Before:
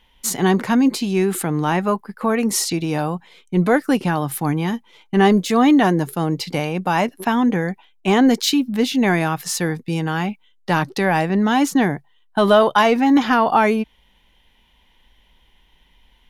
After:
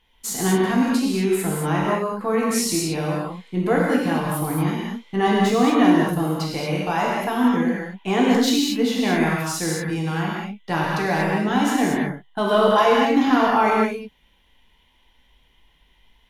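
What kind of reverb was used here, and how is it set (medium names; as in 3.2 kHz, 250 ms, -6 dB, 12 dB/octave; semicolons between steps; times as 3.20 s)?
gated-style reverb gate 260 ms flat, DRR -4.5 dB; trim -7.5 dB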